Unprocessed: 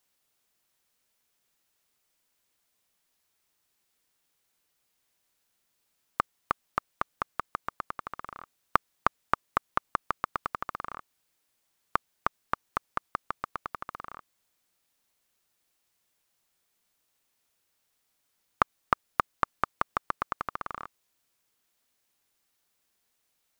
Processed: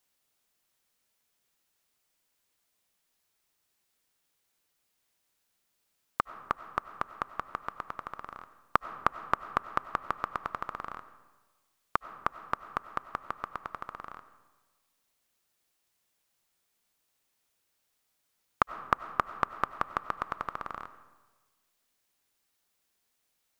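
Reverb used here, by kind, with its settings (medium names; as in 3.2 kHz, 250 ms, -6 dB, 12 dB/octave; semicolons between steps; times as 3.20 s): algorithmic reverb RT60 1.3 s, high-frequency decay 0.6×, pre-delay 55 ms, DRR 13 dB; trim -1.5 dB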